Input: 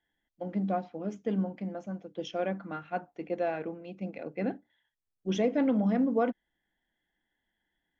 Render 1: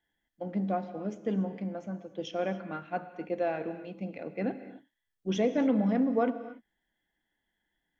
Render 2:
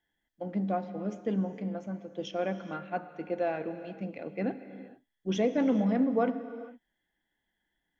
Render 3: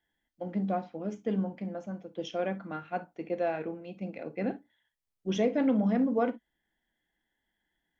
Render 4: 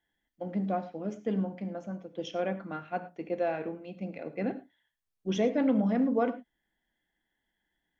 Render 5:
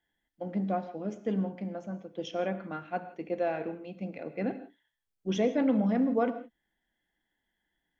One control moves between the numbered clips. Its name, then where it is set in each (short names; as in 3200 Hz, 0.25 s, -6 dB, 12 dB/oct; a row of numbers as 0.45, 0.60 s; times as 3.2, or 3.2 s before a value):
non-linear reverb, gate: 310, 480, 80, 130, 190 ms